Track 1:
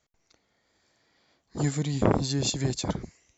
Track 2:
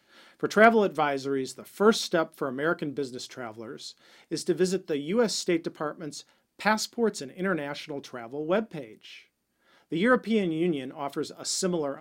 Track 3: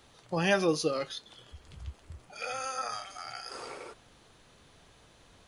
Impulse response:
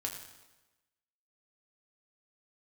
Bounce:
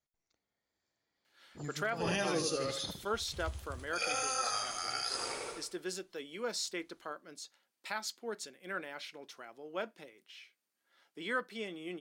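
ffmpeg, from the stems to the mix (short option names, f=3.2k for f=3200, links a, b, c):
-filter_complex "[0:a]volume=-17dB,asplit=2[a][b];[1:a]highpass=f=1.1k:p=1,adelay=1250,volume=-6dB[c];[2:a]agate=range=-23dB:threshold=-51dB:ratio=16:detection=peak,highshelf=f=4.1k:g=11,adelay=1600,volume=0dB,asplit=2[d][e];[e]volume=-5dB[f];[b]apad=whole_len=312150[g];[d][g]sidechaincompress=threshold=-52dB:ratio=8:attack=16:release=228[h];[f]aecho=0:1:76|152|228|304|380:1|0.39|0.152|0.0593|0.0231[i];[a][c][h][i]amix=inputs=4:normalize=0,alimiter=limit=-23dB:level=0:latency=1:release=260"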